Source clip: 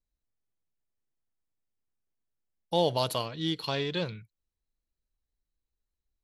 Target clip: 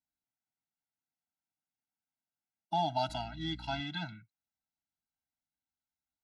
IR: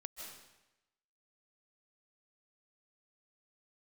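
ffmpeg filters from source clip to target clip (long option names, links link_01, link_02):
-filter_complex "[0:a]highpass=140,equalizer=frequency=380:width_type=q:width=4:gain=6,equalizer=frequency=780:width_type=q:width=4:gain=5,equalizer=frequency=1100:width_type=q:width=4:gain=8,equalizer=frequency=1700:width_type=q:width=4:gain=8,lowpass=frequency=7800:width=0.5412,lowpass=frequency=7800:width=1.3066,asettb=1/sr,asplit=3[link_01][link_02][link_03];[link_01]atrim=end=3.094[link_04];[link_02]atrim=start=3.09:end=3.81,asetpts=PTS-STARTPTS,afade=type=in:duration=0.004:curve=qsin,afade=type=out:start_time=0.716:duration=0.004:curve=qsin,aeval=exprs='val(0)+0.00708*(sin(2*PI*60*n/s)+sin(2*PI*2*60*n/s)/2+sin(2*PI*3*60*n/s)/3+sin(2*PI*4*60*n/s)/4+sin(2*PI*5*60*n/s)/5)':channel_layout=same[link_05];[link_03]atrim=start=3.806[link_06];[link_04][link_05]acrossfade=duration=0.004:curve1=hsin:curve2=qsin[link_07];[link_07][link_06]acrossfade=duration=0.004:curve1=qsin:curve2=hsin,afftfilt=real='re*eq(mod(floor(b*sr/1024/320),2),0)':imag='im*eq(mod(floor(b*sr/1024/320),2),0)':win_size=1024:overlap=0.75,volume=-4dB"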